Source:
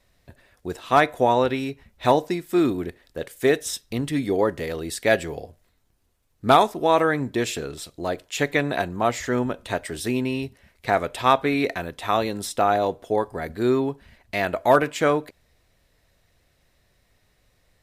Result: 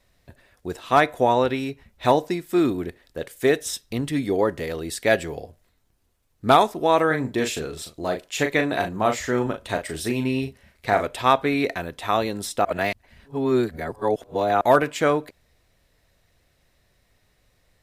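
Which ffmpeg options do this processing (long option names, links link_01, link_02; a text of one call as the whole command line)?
ffmpeg -i in.wav -filter_complex "[0:a]asettb=1/sr,asplit=3[link_01][link_02][link_03];[link_01]atrim=end=7.074[link_04];[link_02]atrim=start=7.07:end=11.07,asetpts=PTS-STARTPTS,afade=type=in:duration=0.004:curve=qsin,afade=type=out:start_time=3.996:duration=0.004:curve=qsin,asplit=2[link_05][link_06];[link_06]adelay=38,volume=-6.5dB[link_07];[link_05][link_07]amix=inputs=2:normalize=0,atrim=end_sample=176400[link_08];[link_03]atrim=start=11.066[link_09];[link_04][link_08]acrossfade=duration=0.004:curve1=hsin:curve2=qsin[link_10];[link_10][link_09]acrossfade=duration=0.004:curve1=qsin:curve2=hsin,asplit=3[link_11][link_12][link_13];[link_11]atrim=end=12.652[link_14];[link_12]atrim=start=12.648:end=14.612,asetpts=PTS-STARTPTS,areverse[link_15];[link_13]atrim=start=14.608[link_16];[link_14][link_15]acrossfade=duration=0.004:curve1=hsin:curve2=hsin[link_17];[link_17][link_16]acrossfade=duration=0.004:curve1=hsin:curve2=hsin" out.wav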